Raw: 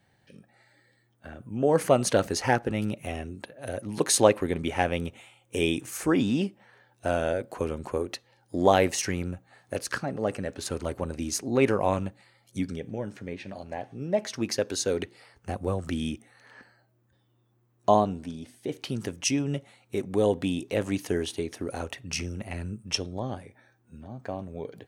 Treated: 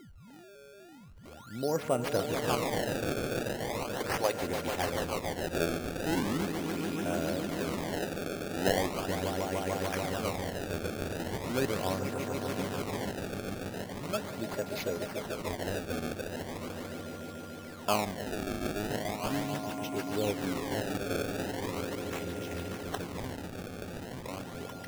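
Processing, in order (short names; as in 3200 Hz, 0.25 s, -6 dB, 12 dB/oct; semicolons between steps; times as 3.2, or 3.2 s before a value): 2.67–4.35 weighting filter A; swelling echo 0.146 s, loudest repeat 5, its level -8 dB; whine 1400 Hz -41 dBFS; decimation with a swept rate 25×, swing 160% 0.39 Hz; gain -8.5 dB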